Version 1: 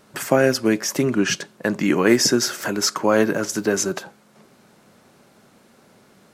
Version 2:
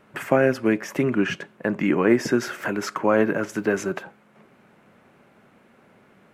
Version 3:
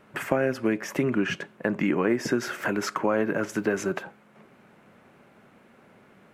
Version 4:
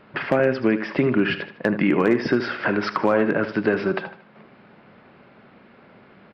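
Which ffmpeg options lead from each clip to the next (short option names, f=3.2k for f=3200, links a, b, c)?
-filter_complex "[0:a]highshelf=f=3.4k:t=q:w=1.5:g=-10.5,acrossover=split=1200[a][b];[b]alimiter=limit=-18dB:level=0:latency=1:release=210[c];[a][c]amix=inputs=2:normalize=0,volume=-2dB"
-af "acompressor=threshold=-21dB:ratio=3"
-filter_complex "[0:a]aresample=11025,aresample=44100,asplit=2[a][b];[b]aecho=0:1:77|154|231|308:0.251|0.0904|0.0326|0.0117[c];[a][c]amix=inputs=2:normalize=0,asoftclip=type=hard:threshold=-14dB,volume=5dB"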